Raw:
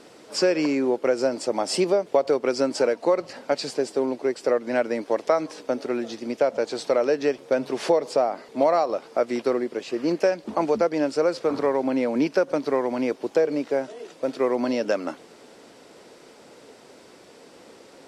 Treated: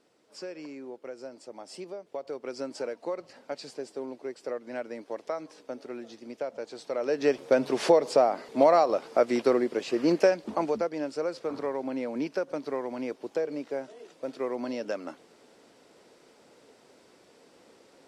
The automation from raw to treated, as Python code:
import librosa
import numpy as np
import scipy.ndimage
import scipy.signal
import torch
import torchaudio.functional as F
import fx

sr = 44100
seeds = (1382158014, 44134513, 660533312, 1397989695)

y = fx.gain(x, sr, db=fx.line((1.96, -19.0), (2.59, -12.5), (6.87, -12.5), (7.32, 0.0), (10.22, 0.0), (10.95, -9.0)))